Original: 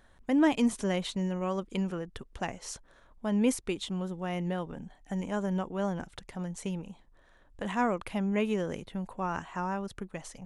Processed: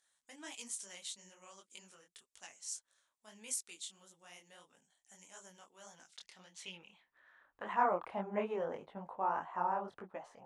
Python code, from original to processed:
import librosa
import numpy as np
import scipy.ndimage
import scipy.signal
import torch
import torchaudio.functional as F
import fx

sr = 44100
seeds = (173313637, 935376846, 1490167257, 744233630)

y = fx.filter_sweep_bandpass(x, sr, from_hz=7800.0, to_hz=820.0, start_s=5.84, end_s=7.95, q=1.7)
y = fx.detune_double(y, sr, cents=58)
y = F.gain(torch.from_numpy(y), 5.5).numpy()